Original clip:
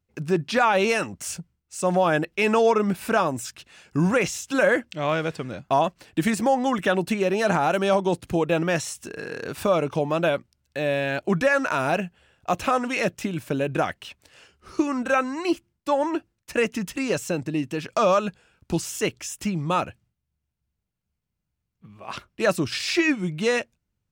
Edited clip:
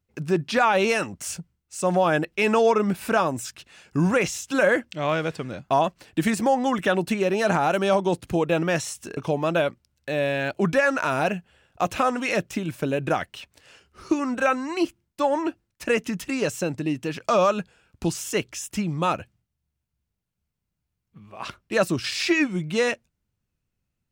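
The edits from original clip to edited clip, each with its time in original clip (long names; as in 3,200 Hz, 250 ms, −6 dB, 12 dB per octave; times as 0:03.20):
0:09.17–0:09.85: remove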